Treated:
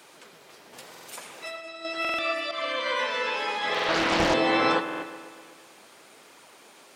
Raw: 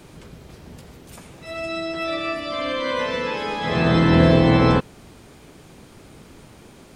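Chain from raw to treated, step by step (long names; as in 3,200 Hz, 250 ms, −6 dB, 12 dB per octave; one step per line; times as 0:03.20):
0:02.51–0:03.16: downward expander −23 dBFS
Bessel high-pass filter 710 Hz, order 2
0:00.73–0:01.85: compressor whose output falls as the input rises −38 dBFS, ratio −1
flanger 0.78 Hz, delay 0.5 ms, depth 9.8 ms, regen +58%
delay with a low-pass on its return 125 ms, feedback 63%, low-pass 3,100 Hz, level −11 dB
buffer that repeats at 0:00.90/0:02.00/0:03.70/0:04.84, samples 2,048, times 3
0:03.74–0:04.34: highs frequency-modulated by the lows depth 0.81 ms
level +4 dB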